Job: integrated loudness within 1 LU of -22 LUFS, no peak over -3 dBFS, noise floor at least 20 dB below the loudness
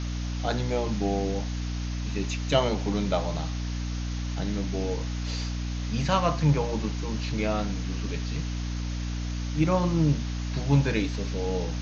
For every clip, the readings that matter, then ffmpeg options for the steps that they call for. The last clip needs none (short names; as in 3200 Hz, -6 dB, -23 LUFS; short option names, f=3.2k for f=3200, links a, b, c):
hum 60 Hz; harmonics up to 300 Hz; hum level -28 dBFS; noise floor -31 dBFS; noise floor target -49 dBFS; loudness -28.5 LUFS; peak -7.5 dBFS; loudness target -22.0 LUFS
-> -af "bandreject=f=60:t=h:w=4,bandreject=f=120:t=h:w=4,bandreject=f=180:t=h:w=4,bandreject=f=240:t=h:w=4,bandreject=f=300:t=h:w=4"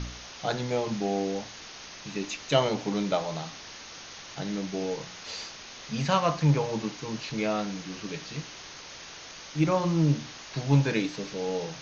hum none; noise floor -45 dBFS; noise floor target -50 dBFS
-> -af "afftdn=nr=6:nf=-45"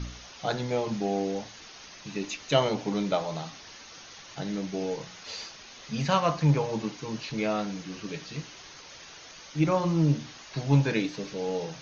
noise floor -48 dBFS; noise floor target -50 dBFS
-> -af "afftdn=nr=6:nf=-48"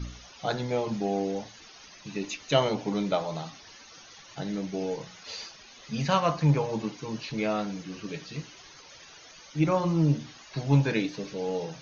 noise floor -51 dBFS; loudness -29.5 LUFS; peak -9.0 dBFS; loudness target -22.0 LUFS
-> -af "volume=7.5dB,alimiter=limit=-3dB:level=0:latency=1"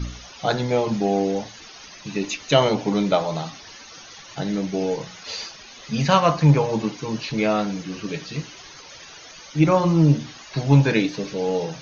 loudness -22.0 LUFS; peak -3.0 dBFS; noise floor -43 dBFS